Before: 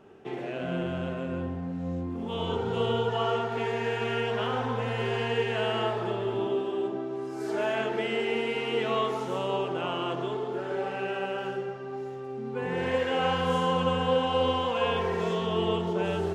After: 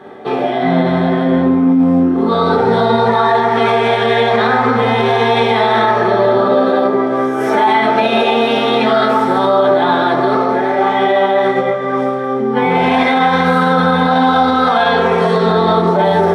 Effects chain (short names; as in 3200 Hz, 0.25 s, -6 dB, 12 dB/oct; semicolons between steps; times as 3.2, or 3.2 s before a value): formant shift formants +4 st; reverb RT60 0.45 s, pre-delay 3 ms, DRR 1.5 dB; maximiser +10 dB; gain -2.5 dB